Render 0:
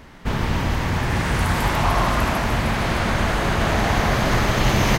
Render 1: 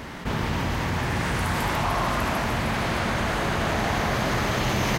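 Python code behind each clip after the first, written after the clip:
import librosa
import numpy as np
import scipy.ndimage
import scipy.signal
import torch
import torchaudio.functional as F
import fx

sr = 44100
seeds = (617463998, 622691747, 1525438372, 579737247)

y = fx.highpass(x, sr, hz=80.0, slope=6)
y = fx.env_flatten(y, sr, amount_pct=50)
y = y * librosa.db_to_amplitude(-5.5)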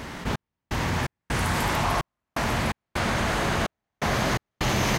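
y = fx.step_gate(x, sr, bpm=127, pattern='xxx...xxx..xxx', floor_db=-60.0, edge_ms=4.5)
y = fx.peak_eq(y, sr, hz=7600.0, db=3.5, octaves=1.5)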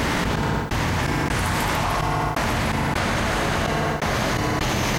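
y = fx.rev_fdn(x, sr, rt60_s=0.7, lf_ratio=0.95, hf_ratio=0.8, size_ms=20.0, drr_db=15.0)
y = fx.env_flatten(y, sr, amount_pct=100)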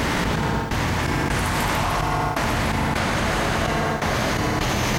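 y = fx.echo_feedback(x, sr, ms=167, feedback_pct=47, wet_db=-12)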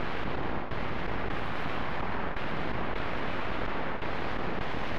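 y = np.abs(x)
y = fx.air_absorb(y, sr, metres=380.0)
y = y * librosa.db_to_amplitude(-5.5)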